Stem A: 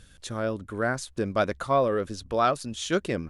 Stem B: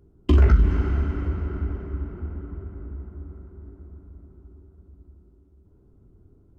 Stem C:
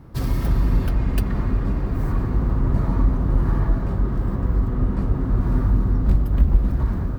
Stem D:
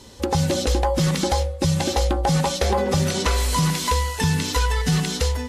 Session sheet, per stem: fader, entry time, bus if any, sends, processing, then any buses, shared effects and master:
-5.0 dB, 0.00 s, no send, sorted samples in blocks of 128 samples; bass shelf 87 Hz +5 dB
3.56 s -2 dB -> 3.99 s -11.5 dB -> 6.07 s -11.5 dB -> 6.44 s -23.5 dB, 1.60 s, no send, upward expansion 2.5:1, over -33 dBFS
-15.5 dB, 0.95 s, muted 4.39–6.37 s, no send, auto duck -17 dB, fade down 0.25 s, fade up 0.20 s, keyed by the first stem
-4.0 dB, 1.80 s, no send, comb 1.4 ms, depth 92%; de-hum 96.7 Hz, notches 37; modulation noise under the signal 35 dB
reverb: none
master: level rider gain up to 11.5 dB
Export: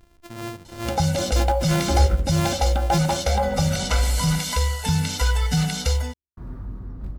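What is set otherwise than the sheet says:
stem D: entry 1.80 s -> 0.65 s; master: missing level rider gain up to 11.5 dB

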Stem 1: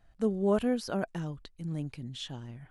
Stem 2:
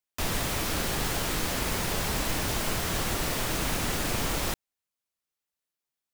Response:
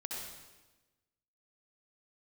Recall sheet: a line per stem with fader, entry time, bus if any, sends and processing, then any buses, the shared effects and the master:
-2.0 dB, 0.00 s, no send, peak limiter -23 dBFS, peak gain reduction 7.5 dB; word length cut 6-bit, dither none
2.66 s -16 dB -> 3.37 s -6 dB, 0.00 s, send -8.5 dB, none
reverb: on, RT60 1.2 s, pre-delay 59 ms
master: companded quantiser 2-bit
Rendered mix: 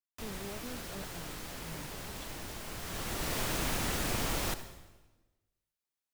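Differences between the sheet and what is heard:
stem 1 -2.0 dB -> -14.0 dB; master: missing companded quantiser 2-bit

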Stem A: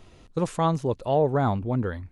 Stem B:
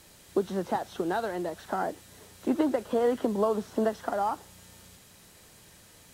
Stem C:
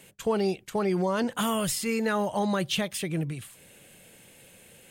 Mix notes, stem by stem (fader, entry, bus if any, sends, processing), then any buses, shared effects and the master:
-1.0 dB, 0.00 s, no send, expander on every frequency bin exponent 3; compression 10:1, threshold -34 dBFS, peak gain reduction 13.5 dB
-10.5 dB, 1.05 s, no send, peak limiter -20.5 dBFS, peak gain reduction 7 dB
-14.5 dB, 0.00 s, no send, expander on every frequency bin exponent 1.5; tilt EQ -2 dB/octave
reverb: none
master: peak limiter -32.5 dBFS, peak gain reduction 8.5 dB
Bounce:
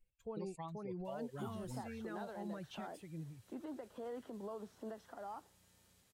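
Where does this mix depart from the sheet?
stem A -1.0 dB -> -9.5 dB; stem B -10.5 dB -> -17.5 dB; stem C -14.5 dB -> -20.5 dB

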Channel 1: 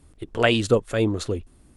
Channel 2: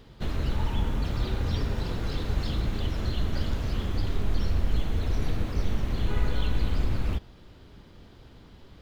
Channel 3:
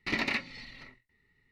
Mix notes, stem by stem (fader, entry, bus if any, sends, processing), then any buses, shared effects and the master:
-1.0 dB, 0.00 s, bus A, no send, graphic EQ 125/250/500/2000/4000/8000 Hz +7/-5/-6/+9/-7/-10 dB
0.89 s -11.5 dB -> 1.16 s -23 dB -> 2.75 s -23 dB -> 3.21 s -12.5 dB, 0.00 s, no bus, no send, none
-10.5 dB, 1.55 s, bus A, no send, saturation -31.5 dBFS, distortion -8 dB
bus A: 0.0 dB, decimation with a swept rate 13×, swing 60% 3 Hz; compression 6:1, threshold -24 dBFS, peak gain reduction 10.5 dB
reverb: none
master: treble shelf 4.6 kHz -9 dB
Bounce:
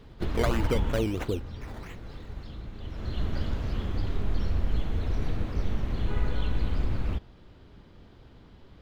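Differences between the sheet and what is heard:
stem 1: missing graphic EQ 125/250/500/2000/4000/8000 Hz +7/-5/-6/+9/-7/-10 dB; stem 2 -11.5 dB -> -0.5 dB

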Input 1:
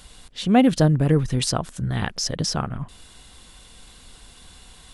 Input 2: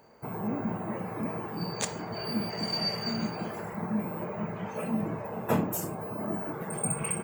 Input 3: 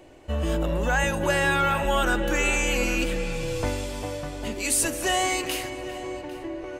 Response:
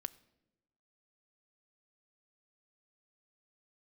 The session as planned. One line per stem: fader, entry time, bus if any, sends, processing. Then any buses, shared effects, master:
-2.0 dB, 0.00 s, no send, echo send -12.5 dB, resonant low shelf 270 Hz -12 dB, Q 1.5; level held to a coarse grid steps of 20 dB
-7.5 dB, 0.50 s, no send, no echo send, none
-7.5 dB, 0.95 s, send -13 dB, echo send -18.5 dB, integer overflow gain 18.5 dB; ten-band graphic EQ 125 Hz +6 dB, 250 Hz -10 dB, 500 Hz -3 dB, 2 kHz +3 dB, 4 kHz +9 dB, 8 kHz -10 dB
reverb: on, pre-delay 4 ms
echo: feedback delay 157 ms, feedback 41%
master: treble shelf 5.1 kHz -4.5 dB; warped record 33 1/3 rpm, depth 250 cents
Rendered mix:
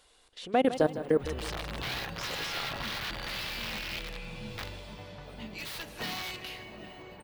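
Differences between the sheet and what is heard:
stem 2 -7.5 dB -> -16.0 dB; stem 3 -7.5 dB -> -14.5 dB; master: missing warped record 33 1/3 rpm, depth 250 cents

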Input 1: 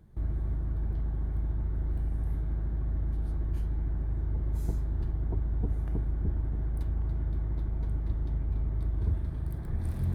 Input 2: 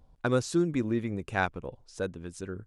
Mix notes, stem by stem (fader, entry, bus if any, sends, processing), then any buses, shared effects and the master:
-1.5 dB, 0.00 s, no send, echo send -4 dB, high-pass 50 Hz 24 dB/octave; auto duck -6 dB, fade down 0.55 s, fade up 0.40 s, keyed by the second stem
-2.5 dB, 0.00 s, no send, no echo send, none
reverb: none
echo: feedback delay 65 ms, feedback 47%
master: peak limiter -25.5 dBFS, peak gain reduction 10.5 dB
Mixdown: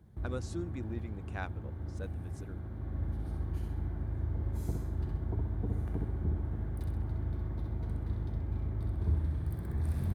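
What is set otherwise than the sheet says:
stem 2 -2.5 dB -> -13.0 dB; master: missing peak limiter -25.5 dBFS, peak gain reduction 10.5 dB

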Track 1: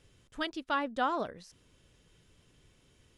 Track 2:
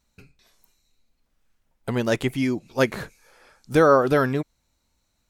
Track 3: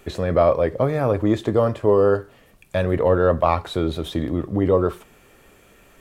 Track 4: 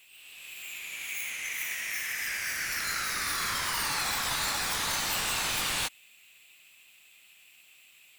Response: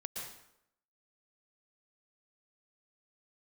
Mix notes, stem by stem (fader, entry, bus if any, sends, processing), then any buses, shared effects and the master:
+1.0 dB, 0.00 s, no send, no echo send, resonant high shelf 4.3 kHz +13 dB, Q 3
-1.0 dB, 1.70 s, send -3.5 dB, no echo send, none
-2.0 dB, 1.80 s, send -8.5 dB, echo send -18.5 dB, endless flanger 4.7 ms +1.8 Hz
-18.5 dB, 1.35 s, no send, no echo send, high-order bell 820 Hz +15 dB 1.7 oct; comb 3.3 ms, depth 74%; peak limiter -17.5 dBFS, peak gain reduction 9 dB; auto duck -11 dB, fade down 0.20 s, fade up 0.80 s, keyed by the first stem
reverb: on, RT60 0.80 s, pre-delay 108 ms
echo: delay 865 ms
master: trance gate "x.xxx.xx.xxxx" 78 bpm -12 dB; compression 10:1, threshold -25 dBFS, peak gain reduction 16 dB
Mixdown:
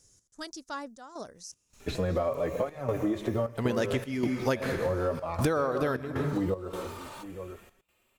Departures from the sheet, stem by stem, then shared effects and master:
stem 1 +1.0 dB -> -5.5 dB; stem 2 -1.0 dB -> +6.5 dB

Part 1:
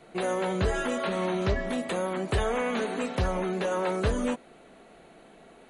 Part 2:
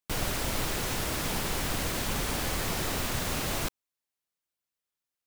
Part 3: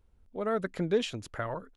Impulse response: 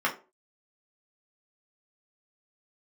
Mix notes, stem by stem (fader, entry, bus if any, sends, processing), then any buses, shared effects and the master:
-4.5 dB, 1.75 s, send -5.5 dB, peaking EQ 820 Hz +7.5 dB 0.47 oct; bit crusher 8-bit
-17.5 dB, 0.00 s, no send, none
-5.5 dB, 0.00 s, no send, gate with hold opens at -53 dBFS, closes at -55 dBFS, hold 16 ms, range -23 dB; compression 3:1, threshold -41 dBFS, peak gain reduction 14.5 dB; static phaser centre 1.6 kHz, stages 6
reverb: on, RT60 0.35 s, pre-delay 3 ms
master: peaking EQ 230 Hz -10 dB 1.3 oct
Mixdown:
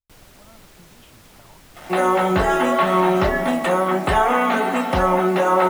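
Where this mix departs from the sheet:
stem 1 -4.5 dB -> +2.5 dB; master: missing peaking EQ 230 Hz -10 dB 1.3 oct

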